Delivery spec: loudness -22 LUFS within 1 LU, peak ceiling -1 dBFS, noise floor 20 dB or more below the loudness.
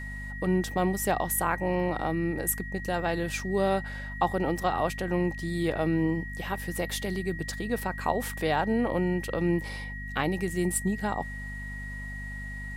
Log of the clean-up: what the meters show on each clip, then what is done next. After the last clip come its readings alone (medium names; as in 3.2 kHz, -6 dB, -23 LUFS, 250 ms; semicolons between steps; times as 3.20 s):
hum 50 Hz; highest harmonic 250 Hz; hum level -36 dBFS; steady tone 1.9 kHz; tone level -39 dBFS; loudness -29.5 LUFS; peak level -11.5 dBFS; loudness target -22.0 LUFS
-> de-hum 50 Hz, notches 5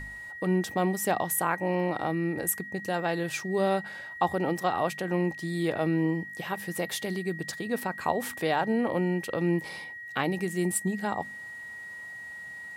hum not found; steady tone 1.9 kHz; tone level -39 dBFS
-> band-stop 1.9 kHz, Q 30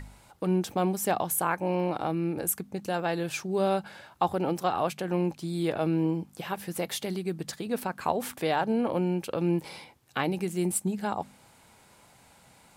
steady tone not found; loudness -29.5 LUFS; peak level -11.5 dBFS; loudness target -22.0 LUFS
-> trim +7.5 dB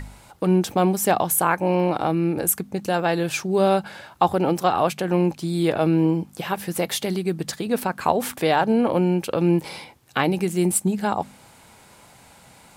loudness -22.0 LUFS; peak level -4.0 dBFS; noise floor -51 dBFS